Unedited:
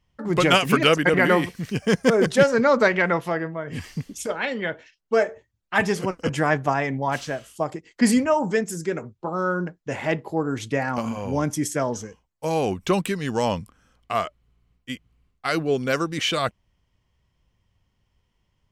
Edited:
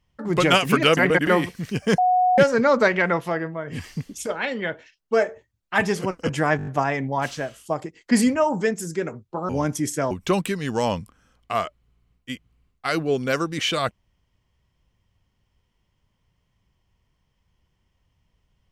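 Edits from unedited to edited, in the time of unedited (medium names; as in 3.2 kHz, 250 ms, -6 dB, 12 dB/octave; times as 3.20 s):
0.97–1.27 s: reverse
1.98–2.38 s: bleep 732 Hz -15 dBFS
6.57 s: stutter 0.02 s, 6 plays
9.39–11.27 s: delete
11.89–12.71 s: delete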